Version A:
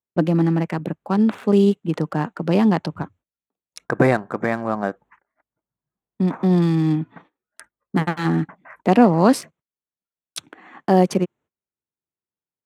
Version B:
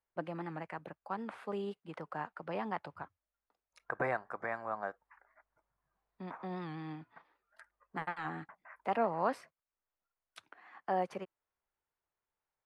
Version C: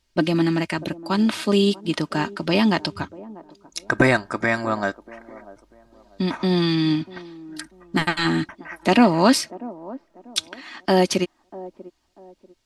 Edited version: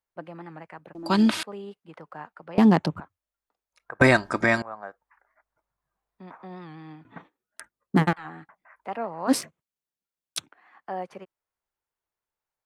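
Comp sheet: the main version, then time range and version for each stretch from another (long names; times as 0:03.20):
B
0:00.95–0:01.43: punch in from C
0:02.58–0:03.00: punch in from A
0:04.01–0:04.62: punch in from C
0:07.05–0:08.13: punch in from A
0:09.30–0:10.46: punch in from A, crossfade 0.06 s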